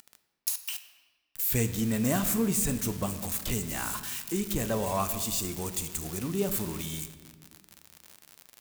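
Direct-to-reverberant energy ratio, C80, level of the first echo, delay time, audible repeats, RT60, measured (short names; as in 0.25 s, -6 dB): 9.0 dB, 12.5 dB, none, none, none, 1.5 s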